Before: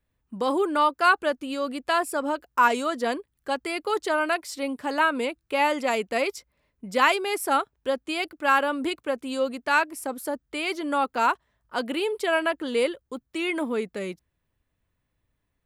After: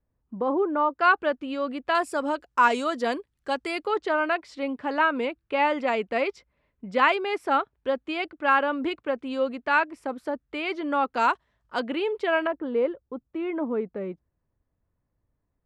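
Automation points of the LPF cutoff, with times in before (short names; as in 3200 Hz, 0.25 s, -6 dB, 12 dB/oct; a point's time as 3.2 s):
1100 Hz
from 0.97 s 2900 Hz
from 1.95 s 6700 Hz
from 3.87 s 2900 Hz
from 11.14 s 6000 Hz
from 11.8 s 2800 Hz
from 12.47 s 1100 Hz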